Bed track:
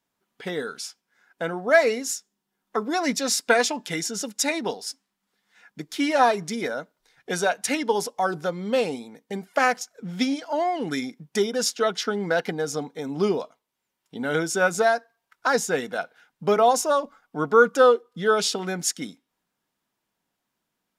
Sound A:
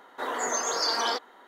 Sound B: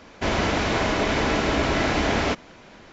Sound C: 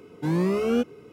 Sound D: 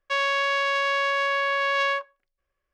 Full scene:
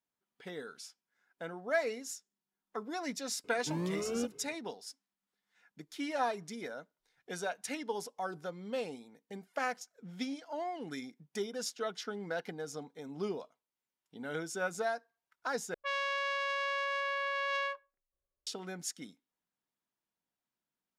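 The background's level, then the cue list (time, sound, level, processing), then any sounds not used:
bed track -14 dB
3.44 s: add C -12 dB
15.74 s: replace with D -10.5 dB + level-controlled noise filter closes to 700 Hz, open at -20.5 dBFS
not used: A, B

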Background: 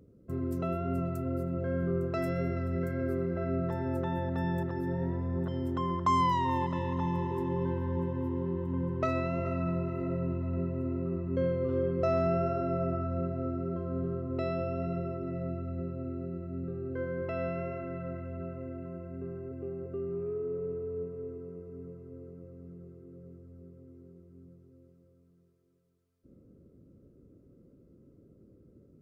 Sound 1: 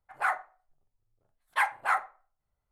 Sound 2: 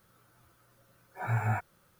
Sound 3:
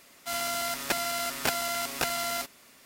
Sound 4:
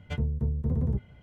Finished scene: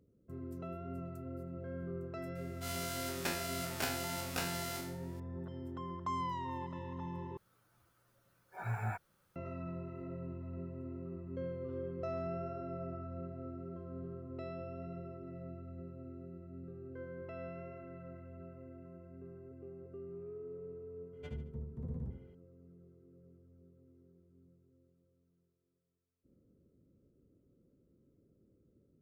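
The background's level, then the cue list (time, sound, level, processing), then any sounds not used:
background -11.5 dB
2.35 s: add 3 -11.5 dB + spectral sustain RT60 0.63 s
7.37 s: replace with 2 -8 dB
21.13 s: add 4 -15 dB + feedback delay 73 ms, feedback 37%, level -7 dB
not used: 1

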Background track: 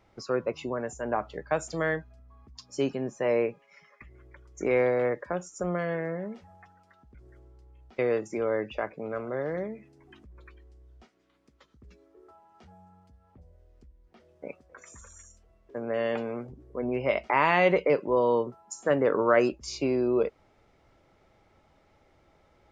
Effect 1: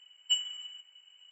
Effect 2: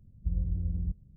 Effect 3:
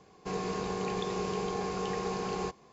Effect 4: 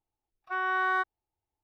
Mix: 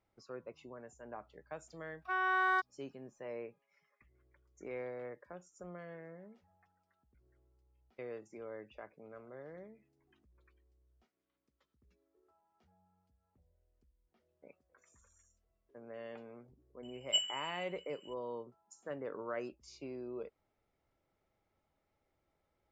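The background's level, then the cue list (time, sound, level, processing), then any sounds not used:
background track -18.5 dB
1.58 s: add 4 -3.5 dB
16.83 s: add 1 -3 dB
not used: 2, 3

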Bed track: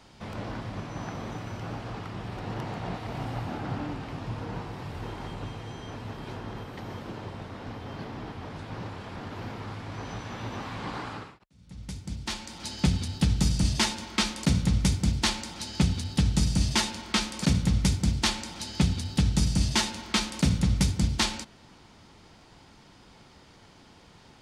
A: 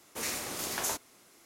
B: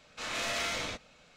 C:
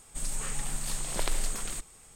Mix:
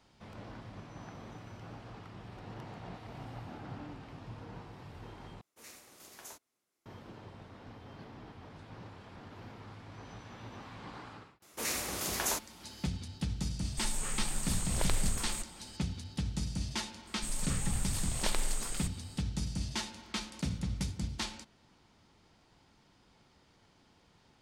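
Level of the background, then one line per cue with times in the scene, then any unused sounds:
bed track -11.5 dB
5.41 s: replace with A -16 dB + upward expansion, over -48 dBFS
11.42 s: add A
13.62 s: add C -2 dB
17.07 s: add C -3 dB
not used: B

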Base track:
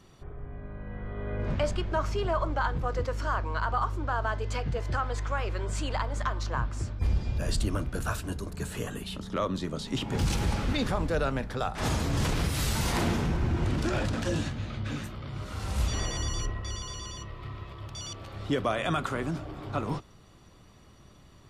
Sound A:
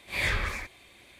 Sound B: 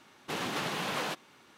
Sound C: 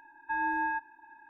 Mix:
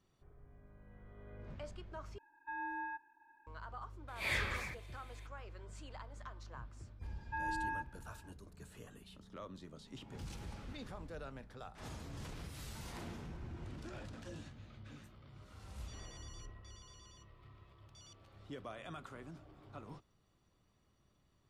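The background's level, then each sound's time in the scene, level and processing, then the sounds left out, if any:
base track -19.5 dB
2.18 s: replace with C -11.5 dB
4.08 s: add A -7.5 dB + high-pass 54 Hz
7.03 s: add C -8.5 dB
not used: B

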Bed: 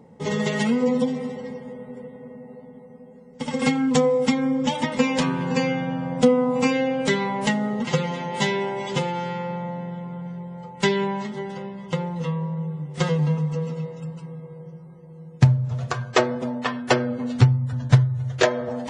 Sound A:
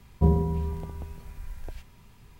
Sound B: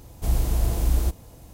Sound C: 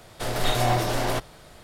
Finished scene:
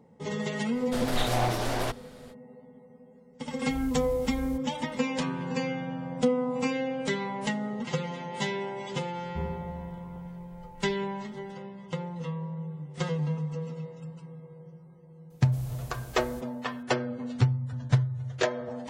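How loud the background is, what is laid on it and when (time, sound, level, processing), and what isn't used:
bed -8 dB
0.72 s: add C -4 dB, fades 0.05 s + loudspeaker Doppler distortion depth 0.19 ms
3.47 s: add B -16 dB
9.14 s: add A -14 dB + repeats whose band climbs or falls 205 ms, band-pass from 670 Hz, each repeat 0.7 oct, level -1 dB
15.30 s: add B -14 dB + bass shelf 220 Hz -11 dB

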